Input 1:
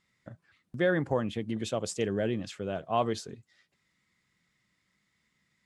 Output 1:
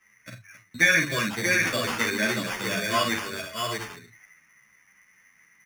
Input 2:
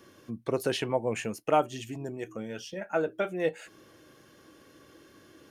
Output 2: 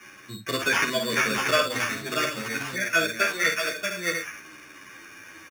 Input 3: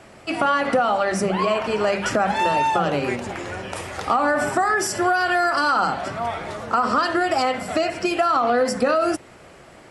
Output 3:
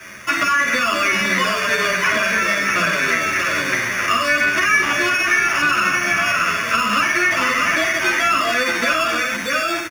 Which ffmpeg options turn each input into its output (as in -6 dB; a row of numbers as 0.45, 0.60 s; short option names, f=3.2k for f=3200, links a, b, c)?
-filter_complex "[0:a]superequalizer=11b=2.51:12b=1.58,asplit=2[a][b];[b]asoftclip=type=hard:threshold=-14dB,volume=-8dB[c];[a][c]amix=inputs=2:normalize=0,asuperstop=centerf=830:order=12:qfactor=2.6,bandreject=f=50:t=h:w=6,bandreject=f=100:t=h:w=6,bandreject=f=150:t=h:w=6,asplit=2[d][e];[e]aecho=0:1:48|57|269|634|708|742:0.501|0.112|0.15|0.562|0.299|0.133[f];[d][f]amix=inputs=2:normalize=0,acrusher=samples=11:mix=1:aa=0.000001,acrossover=split=5700[g][h];[h]acompressor=threshold=-32dB:ratio=4:attack=1:release=60[i];[g][i]amix=inputs=2:normalize=0,asplit=2[j][k];[k]highpass=f=720:p=1,volume=9dB,asoftclip=type=tanh:threshold=-2.5dB[l];[j][l]amix=inputs=2:normalize=0,lowpass=f=6.5k:p=1,volume=-6dB,acrossover=split=91|420|6800[m][n][o][p];[m]acompressor=threshold=-54dB:ratio=4[q];[n]acompressor=threshold=-27dB:ratio=4[r];[o]acompressor=threshold=-16dB:ratio=4[s];[p]acompressor=threshold=-39dB:ratio=4[t];[q][r][s][t]amix=inputs=4:normalize=0,equalizer=f=490:w=1.2:g=-9.5,asplit=2[u][v];[v]adelay=10.4,afreqshift=-0.87[w];[u][w]amix=inputs=2:normalize=1,volume=5.5dB"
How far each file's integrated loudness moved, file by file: +7.0, +6.5, +4.5 LU